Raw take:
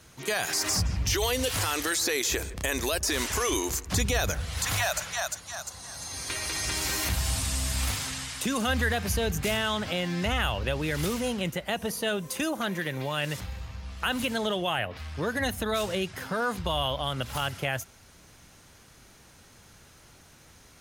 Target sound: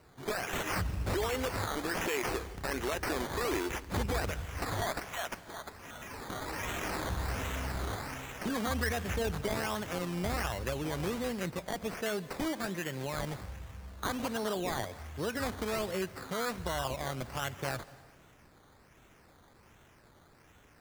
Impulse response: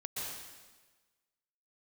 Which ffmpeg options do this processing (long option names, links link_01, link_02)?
-filter_complex "[0:a]equalizer=frequency=370:width_type=o:width=0.77:gain=3.5,acrusher=samples=13:mix=1:aa=0.000001:lfo=1:lforange=7.8:lforate=1.3,asplit=2[link_01][link_02];[1:a]atrim=start_sample=2205,adelay=22[link_03];[link_02][link_03]afir=irnorm=-1:irlink=0,volume=-19dB[link_04];[link_01][link_04]amix=inputs=2:normalize=0,volume=-6.5dB"